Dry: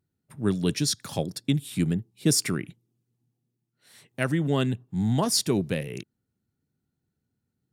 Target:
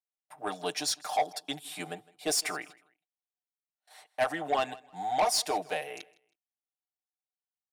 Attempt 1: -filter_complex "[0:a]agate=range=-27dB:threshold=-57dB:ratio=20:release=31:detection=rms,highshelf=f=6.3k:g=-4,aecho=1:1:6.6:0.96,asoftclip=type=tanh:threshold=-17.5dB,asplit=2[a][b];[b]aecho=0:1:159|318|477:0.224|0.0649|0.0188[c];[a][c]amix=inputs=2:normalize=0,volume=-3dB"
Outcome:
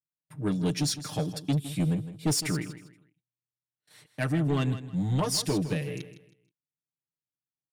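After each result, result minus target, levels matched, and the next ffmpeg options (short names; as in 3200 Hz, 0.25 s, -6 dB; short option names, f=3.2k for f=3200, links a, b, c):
1000 Hz band -12.0 dB; echo-to-direct +9.5 dB
-filter_complex "[0:a]agate=range=-27dB:threshold=-57dB:ratio=20:release=31:detection=rms,highpass=f=730:t=q:w=8.4,highshelf=f=6.3k:g=-4,aecho=1:1:6.6:0.96,asoftclip=type=tanh:threshold=-17.5dB,asplit=2[a][b];[b]aecho=0:1:159|318|477:0.224|0.0649|0.0188[c];[a][c]amix=inputs=2:normalize=0,volume=-3dB"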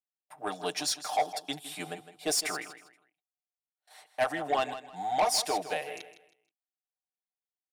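echo-to-direct +9.5 dB
-filter_complex "[0:a]agate=range=-27dB:threshold=-57dB:ratio=20:release=31:detection=rms,highpass=f=730:t=q:w=8.4,highshelf=f=6.3k:g=-4,aecho=1:1:6.6:0.96,asoftclip=type=tanh:threshold=-17.5dB,asplit=2[a][b];[b]aecho=0:1:159|318:0.075|0.0217[c];[a][c]amix=inputs=2:normalize=0,volume=-3dB"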